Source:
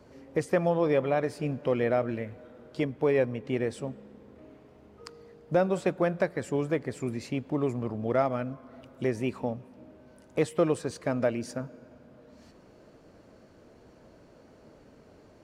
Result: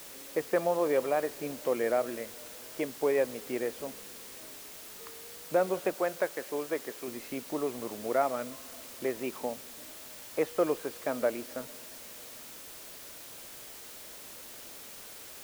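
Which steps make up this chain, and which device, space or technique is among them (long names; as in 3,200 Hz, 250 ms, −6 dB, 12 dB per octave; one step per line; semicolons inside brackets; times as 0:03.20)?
wax cylinder (band-pass filter 340–2,500 Hz; tape wow and flutter; white noise bed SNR 13 dB)
0:05.94–0:07.08: low-shelf EQ 190 Hz −10.5 dB
level −1 dB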